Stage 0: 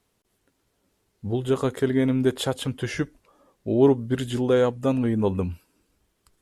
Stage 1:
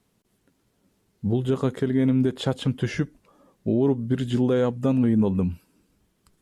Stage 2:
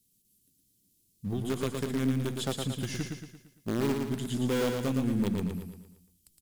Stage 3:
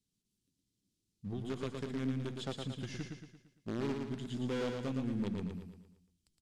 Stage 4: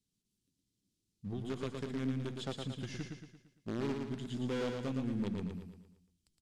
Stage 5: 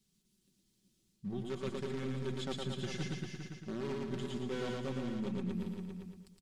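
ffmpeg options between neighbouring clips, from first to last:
ffmpeg -i in.wav -filter_complex "[0:a]acrossover=split=7100[link_01][link_02];[link_02]acompressor=threshold=-55dB:ratio=4:attack=1:release=60[link_03];[link_01][link_03]amix=inputs=2:normalize=0,equalizer=frequency=180:width_type=o:width=1.3:gain=9,alimiter=limit=-12.5dB:level=0:latency=1:release=254" out.wav
ffmpeg -i in.wav -filter_complex "[0:a]aemphasis=mode=production:type=75fm,acrossover=split=360|2800[link_01][link_02][link_03];[link_02]acrusher=bits=5:dc=4:mix=0:aa=0.000001[link_04];[link_01][link_04][link_03]amix=inputs=3:normalize=0,aecho=1:1:114|228|342|456|570|684:0.596|0.28|0.132|0.0618|0.0291|0.0137,volume=-8dB" out.wav
ffmpeg -i in.wav -af "lowpass=5500,volume=-7.5dB" out.wav
ffmpeg -i in.wav -af anull out.wav
ffmpeg -i in.wav -af "aecho=1:1:5.3:0.63,areverse,acompressor=threshold=-43dB:ratio=6,areverse,aecho=1:1:397:0.447,volume=7dB" out.wav

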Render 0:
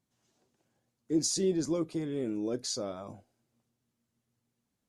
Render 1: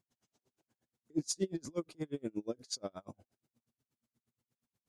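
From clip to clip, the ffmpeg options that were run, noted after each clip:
ffmpeg -i in.wav -af "aeval=exprs='val(0)*pow(10,-37*(0.5-0.5*cos(2*PI*8.4*n/s))/20)':channel_layout=same,volume=1dB" out.wav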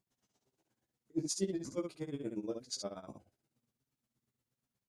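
ffmpeg -i in.wav -af "aecho=1:1:15|69:0.596|0.562,volume=-2.5dB" out.wav

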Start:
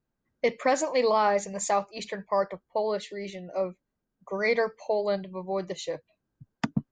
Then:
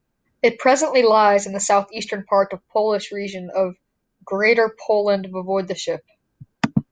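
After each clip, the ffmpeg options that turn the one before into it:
ffmpeg -i in.wav -af "equalizer=frequency=2400:width_type=o:width=0.31:gain=3,volume=9dB" out.wav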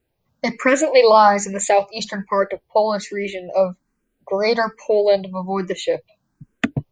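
ffmpeg -i in.wav -filter_complex "[0:a]asplit=2[link_01][link_02];[link_02]afreqshift=1.2[link_03];[link_01][link_03]amix=inputs=2:normalize=1,volume=4dB" out.wav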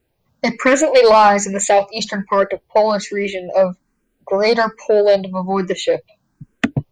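ffmpeg -i in.wav -af "acontrast=66,volume=-2dB" out.wav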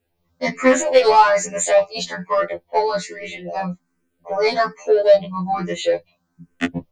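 ffmpeg -i in.wav -af "afftfilt=real='re*2*eq(mod(b,4),0)':imag='im*2*eq(mod(b,4),0)':win_size=2048:overlap=0.75,volume=-1dB" out.wav

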